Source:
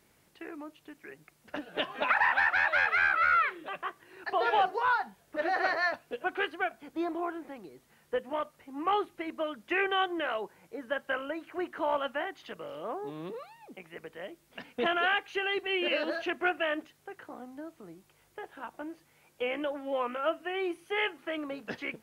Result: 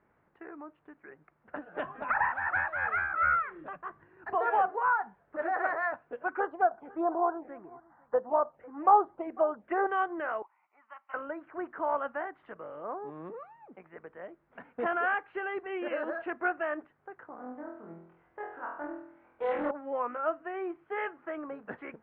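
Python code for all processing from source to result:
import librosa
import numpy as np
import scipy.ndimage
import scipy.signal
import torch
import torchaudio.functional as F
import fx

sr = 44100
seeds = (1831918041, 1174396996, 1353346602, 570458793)

y = fx.chain(x, sr, fx.tremolo(hz=2.8, depth=0.55),
    fx.bass_treble(bass_db=13, treble_db=6), at=(1.84, 4.35))
y = fx.chain(y, sr, fx.peak_eq(hz=760.0, db=11.0, octaves=1.5),
    fx.env_phaser(low_hz=400.0, high_hz=2400.0, full_db=-23.5),
    fx.echo_single(ms=498, db=-23.5), at=(6.28, 9.87))
y = fx.chain(y, sr, fx.highpass(hz=1200.0, slope=12),
    fx.fixed_phaser(hz=2400.0, stages=8), at=(10.42, 11.14))
y = fx.chain(y, sr, fx.room_flutter(wall_m=4.1, rt60_s=0.64),
    fx.doppler_dist(depth_ms=0.35), at=(17.36, 19.71))
y = scipy.signal.sosfilt(scipy.signal.butter(4, 1500.0, 'lowpass', fs=sr, output='sos'), y)
y = fx.tilt_shelf(y, sr, db=-4.5, hz=830.0)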